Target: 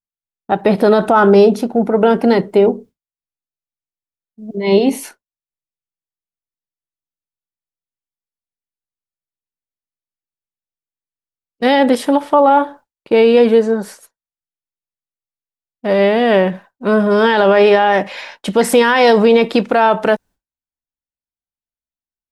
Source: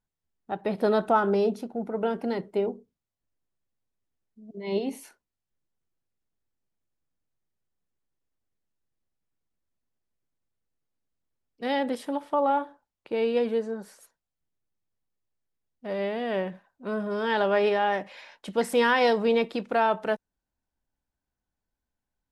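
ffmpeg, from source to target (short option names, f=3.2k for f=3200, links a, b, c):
-af "agate=range=-33dB:threshold=-47dB:ratio=3:detection=peak,alimiter=level_in=18dB:limit=-1dB:release=50:level=0:latency=1,volume=-1dB"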